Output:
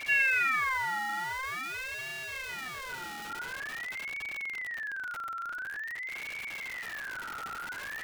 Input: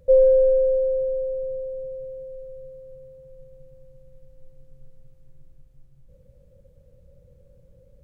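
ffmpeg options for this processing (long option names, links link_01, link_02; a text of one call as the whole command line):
ffmpeg -i in.wav -af "aeval=exprs='val(0)+0.5*0.0596*sgn(val(0))':channel_layout=same,equalizer=frequency=340:width=0.56:gain=-6.5,aeval=exprs='val(0)*sin(2*PI*1800*n/s+1800*0.25/0.47*sin(2*PI*0.47*n/s))':channel_layout=same,volume=-5dB" out.wav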